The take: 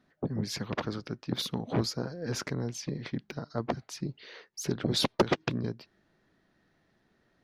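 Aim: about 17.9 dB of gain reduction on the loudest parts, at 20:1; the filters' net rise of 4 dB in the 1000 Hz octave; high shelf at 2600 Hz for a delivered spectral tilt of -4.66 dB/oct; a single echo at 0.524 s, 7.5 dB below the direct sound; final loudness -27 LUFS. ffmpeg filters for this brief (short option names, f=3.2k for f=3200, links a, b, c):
-af "equalizer=f=1k:t=o:g=5.5,highshelf=f=2.6k:g=-3,acompressor=threshold=-35dB:ratio=20,aecho=1:1:524:0.422,volume=14.5dB"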